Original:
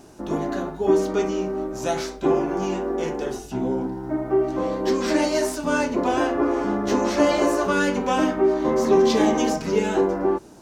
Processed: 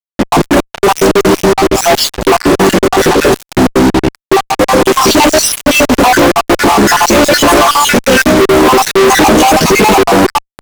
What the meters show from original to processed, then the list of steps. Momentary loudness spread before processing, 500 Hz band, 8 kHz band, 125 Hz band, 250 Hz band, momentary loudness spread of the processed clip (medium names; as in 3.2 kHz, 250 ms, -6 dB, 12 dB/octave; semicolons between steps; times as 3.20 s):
8 LU, +12.0 dB, +21.5 dB, +16.5 dB, +12.5 dB, 5 LU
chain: random holes in the spectrogram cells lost 63%; fuzz box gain 45 dB, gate -40 dBFS; trim +8.5 dB